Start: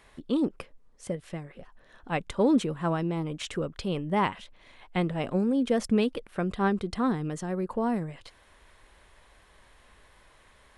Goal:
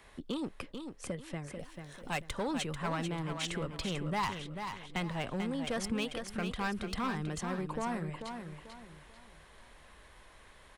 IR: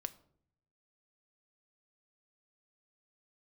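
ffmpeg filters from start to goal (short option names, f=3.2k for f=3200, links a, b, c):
-filter_complex "[0:a]asettb=1/sr,asplit=3[a][b][c];[a]atrim=end=1.594[d];[b]atrim=start=1.59:end=2.21,asetpts=PTS-STARTPTS,afade=t=in:d=0.004:c=qsin,afade=t=out:st=0.616:d=0.004:c=qsin,bass=f=250:g=-1,treble=f=4k:g=15[e];[c]atrim=start=2.206[f];[d][e]acrossfade=d=0.004:c1=hsin:c2=qsin[g];[g][f]acrossfade=d=0.004:c1=qsin:c2=hsin,acrossover=split=130|810|4700[h][i][j][k];[i]acompressor=threshold=-38dB:ratio=6[l];[h][l][j][k]amix=inputs=4:normalize=0,asoftclip=type=hard:threshold=-28.5dB,aecho=1:1:441|882|1323|1764:0.447|0.147|0.0486|0.0161"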